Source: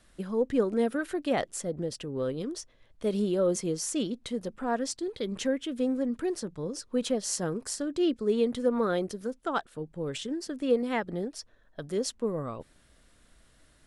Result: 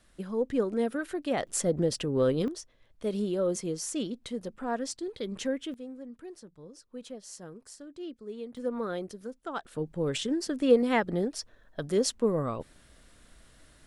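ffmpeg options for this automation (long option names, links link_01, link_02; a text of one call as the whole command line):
ffmpeg -i in.wav -af "asetnsamples=nb_out_samples=441:pad=0,asendcmd='1.47 volume volume 6dB;2.48 volume volume -2.5dB;5.74 volume volume -14dB;8.57 volume volume -6dB;9.65 volume volume 4dB',volume=-2dB" out.wav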